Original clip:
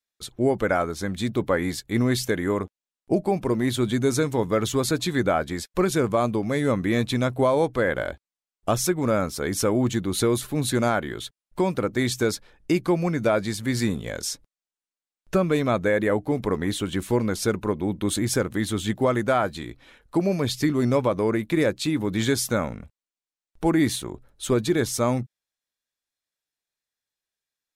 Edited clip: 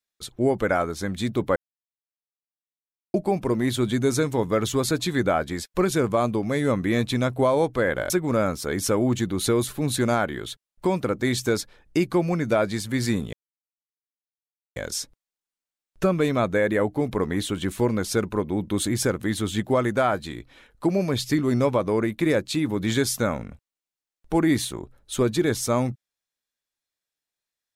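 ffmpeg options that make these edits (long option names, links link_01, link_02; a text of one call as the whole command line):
ffmpeg -i in.wav -filter_complex "[0:a]asplit=5[link_01][link_02][link_03][link_04][link_05];[link_01]atrim=end=1.56,asetpts=PTS-STARTPTS,afade=type=out:start_time=1.556:duration=0.004:curve=hsin[link_06];[link_02]atrim=start=1.56:end=3.14,asetpts=PTS-STARTPTS,volume=0[link_07];[link_03]atrim=start=3.14:end=8.102,asetpts=PTS-STARTPTS,afade=type=in:duration=0.004:curve=hsin[link_08];[link_04]atrim=start=8.838:end=14.07,asetpts=PTS-STARTPTS,afade=type=out:start_time=5.228:duration=0.004:curve=hsin,apad=pad_dur=1.43[link_09];[link_05]atrim=start=14.07,asetpts=PTS-STARTPTS,afade=type=in:duration=0.004:curve=hsin[link_10];[link_06][link_07][link_08]concat=n=3:v=0:a=1[link_11];[link_09][link_10]concat=n=2:v=0:a=1[link_12];[link_11][link_12]acrossfade=duration=0.004:curve1=hsin:curve2=hsin" out.wav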